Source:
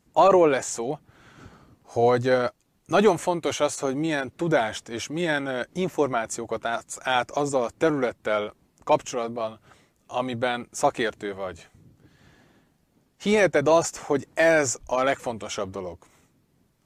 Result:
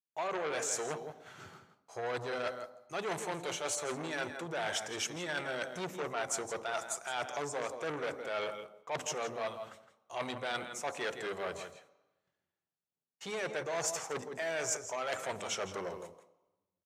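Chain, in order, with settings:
high-pass filter 730 Hz 6 dB per octave
noise gate −55 dBFS, range −31 dB
reversed playback
downward compressor 16 to 1, threshold −32 dBFS, peak gain reduction 17 dB
reversed playback
slap from a distant wall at 28 metres, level −10 dB
on a send at −13 dB: convolution reverb RT60 1.0 s, pre-delay 3 ms
on the sum: saturating transformer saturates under 2,900 Hz
level +1.5 dB

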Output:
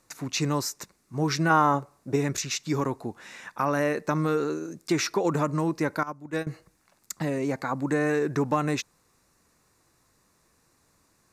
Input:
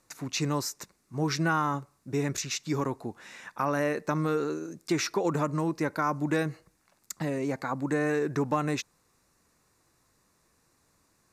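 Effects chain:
0:01.50–0:02.16: parametric band 610 Hz +8.5 dB 1.7 octaves
0:06.03–0:06.47: noise gate −24 dBFS, range −17 dB
level +2.5 dB

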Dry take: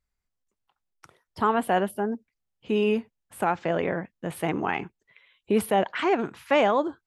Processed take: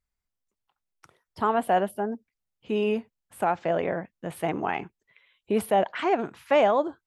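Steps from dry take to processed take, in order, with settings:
dynamic equaliser 660 Hz, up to +6 dB, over −37 dBFS, Q 2.1
level −3 dB

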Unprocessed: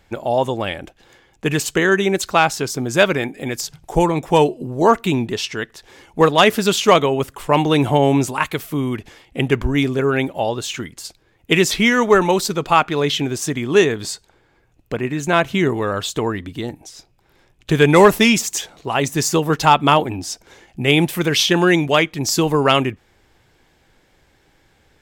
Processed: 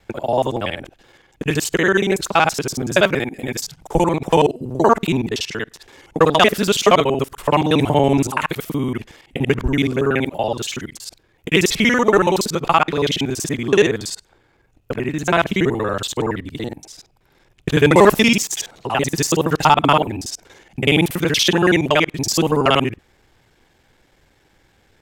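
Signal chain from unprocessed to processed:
reversed piece by piece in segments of 47 ms

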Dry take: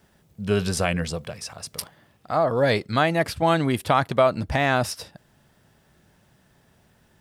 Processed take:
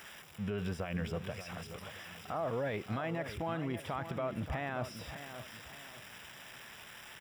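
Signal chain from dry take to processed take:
spike at every zero crossing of −22 dBFS
downward compressor, threshold −22 dBFS, peak gain reduction 9 dB
brickwall limiter −22 dBFS, peak gain reduction 10.5 dB
Savitzky-Golay smoothing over 25 samples
repeating echo 580 ms, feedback 36%, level −10.5 dB
level −5.5 dB

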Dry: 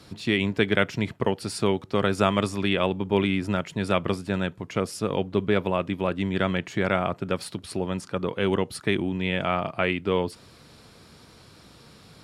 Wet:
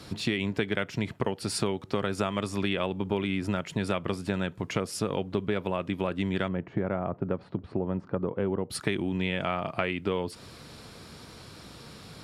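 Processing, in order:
0:06.48–0:08.70: Bessel low-pass filter 810 Hz, order 2
downward compressor 6 to 1, threshold −29 dBFS, peak gain reduction 13.5 dB
level +4 dB

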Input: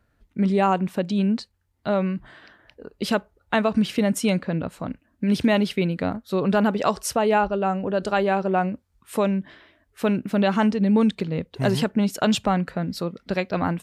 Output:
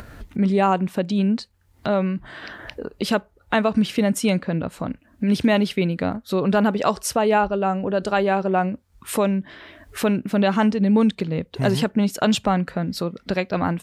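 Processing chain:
upward compression, threshold −23 dBFS
level +1.5 dB

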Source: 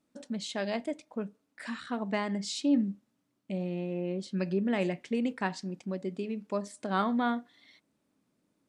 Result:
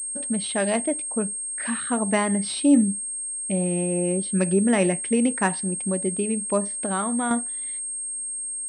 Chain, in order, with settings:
0:06.68–0:07.31: downward compressor 2.5 to 1, threshold −35 dBFS, peak gain reduction 8.5 dB
switching amplifier with a slow clock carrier 8,500 Hz
level +9 dB

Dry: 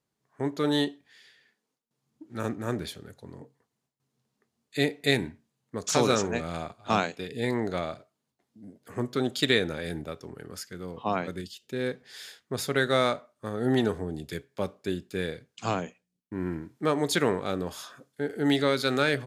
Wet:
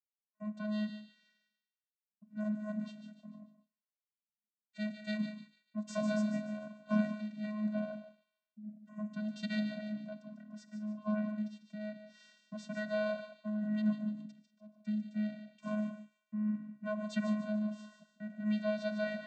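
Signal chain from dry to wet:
downward expander −55 dBFS
0:14.23–0:14.74: volume swells 559 ms
delay with a high-pass on its return 147 ms, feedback 37%, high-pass 2,600 Hz, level −8.5 dB
reverb whose tail is shaped and stops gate 210 ms rising, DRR 11.5 dB
channel vocoder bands 16, square 212 Hz
level −7.5 dB

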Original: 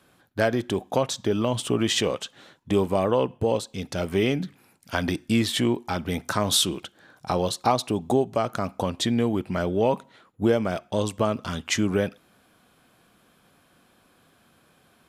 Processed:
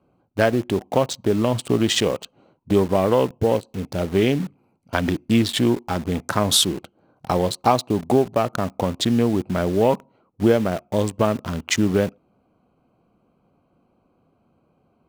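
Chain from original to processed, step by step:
adaptive Wiener filter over 25 samples
in parallel at −3 dB: bit reduction 6 bits

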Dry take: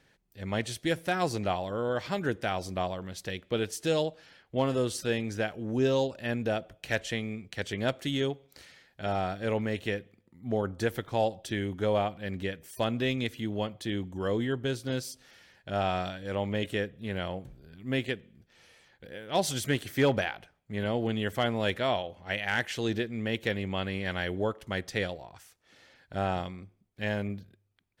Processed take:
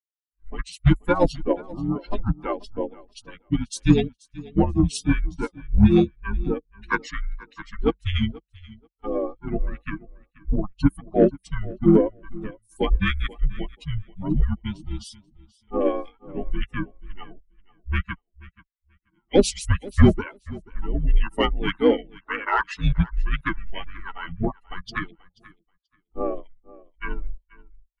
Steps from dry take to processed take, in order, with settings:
spectral dynamics exaggerated over time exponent 3
pitch-shifted copies added −7 semitones −7 dB, −5 semitones −6 dB
tilt shelving filter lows +5 dB, about 730 Hz
automatic gain control gain up to 13 dB
brick-wall band-pass 150–11,000 Hz
in parallel at −4 dB: soft clipping −12.5 dBFS, distortion −13 dB
on the sum: frequency shifter −190 Hz
on a send: repeating echo 483 ms, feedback 15%, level −21 dB
on the sum: level −1.5 dB

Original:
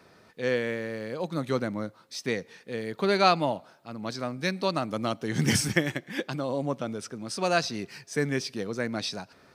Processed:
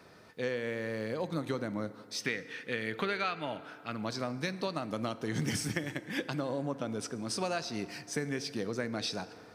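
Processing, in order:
0:02.20–0:04.03: flat-topped bell 2,100 Hz +9.5 dB
downward compressor 8 to 1, threshold −30 dBFS, peak gain reduction 19 dB
feedback delay network reverb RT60 2.7 s, low-frequency decay 0.75×, high-frequency decay 0.45×, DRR 13 dB

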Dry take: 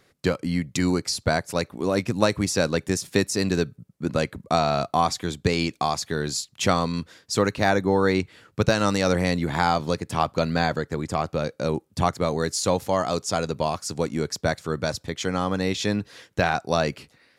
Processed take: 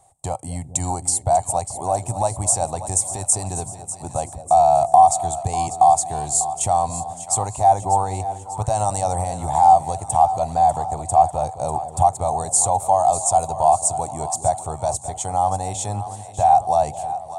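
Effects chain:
brickwall limiter −13.5 dBFS, peak gain reduction 9 dB
drawn EQ curve 110 Hz 0 dB, 190 Hz −16 dB, 300 Hz −16 dB, 500 Hz −13 dB, 770 Hz +14 dB, 1,500 Hz −22 dB, 3,400 Hz −14 dB, 5,000 Hz −16 dB, 8,600 Hz +15 dB, 12,000 Hz −8 dB
on a send: echo with a time of its own for lows and highs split 640 Hz, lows 217 ms, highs 595 ms, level −12 dB
on the sum: level +6 dB

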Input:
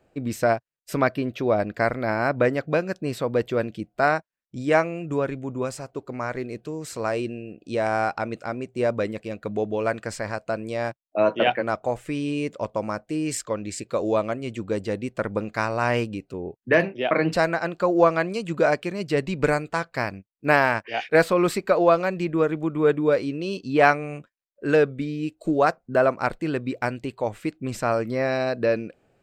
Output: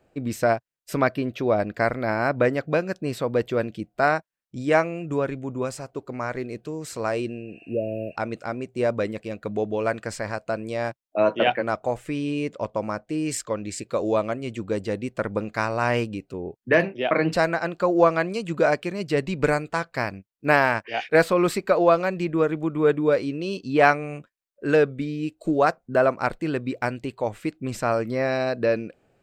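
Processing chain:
0:07.50–0:08.13: healed spectral selection 650–10,000 Hz before
0:12.09–0:13.18: high-shelf EQ 8,500 Hz −7.5 dB

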